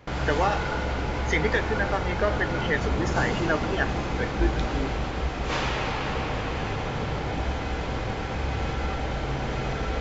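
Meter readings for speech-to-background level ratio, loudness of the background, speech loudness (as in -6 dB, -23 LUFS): 0.0 dB, -29.0 LUFS, -29.0 LUFS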